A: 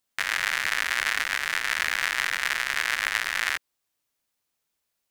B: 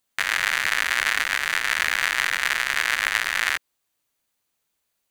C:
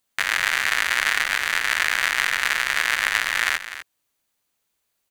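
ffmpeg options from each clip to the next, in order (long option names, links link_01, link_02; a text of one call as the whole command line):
ffmpeg -i in.wav -af "bandreject=frequency=5300:width=13,volume=3.5dB" out.wav
ffmpeg -i in.wav -af "aecho=1:1:250:0.237,volume=1dB" out.wav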